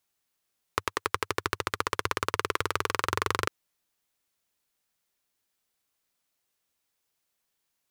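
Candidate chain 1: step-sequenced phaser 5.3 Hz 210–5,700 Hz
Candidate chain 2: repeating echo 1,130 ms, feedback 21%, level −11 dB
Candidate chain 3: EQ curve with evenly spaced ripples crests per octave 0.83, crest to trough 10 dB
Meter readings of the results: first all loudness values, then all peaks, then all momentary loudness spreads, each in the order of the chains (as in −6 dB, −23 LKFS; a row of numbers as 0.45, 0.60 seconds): −34.5, −31.5, −29.0 LKFS; −7.5, −6.0, −5.5 dBFS; 4, 12, 4 LU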